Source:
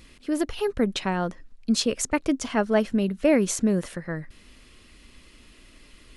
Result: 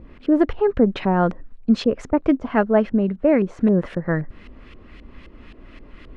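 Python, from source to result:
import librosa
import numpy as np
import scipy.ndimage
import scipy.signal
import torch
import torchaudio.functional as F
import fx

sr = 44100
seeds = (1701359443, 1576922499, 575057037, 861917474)

y = fx.rider(x, sr, range_db=4, speed_s=0.5)
y = fx.filter_lfo_lowpass(y, sr, shape='saw_up', hz=3.8, low_hz=590.0, high_hz=2700.0, q=0.88)
y = y * librosa.db_to_amplitude(6.0)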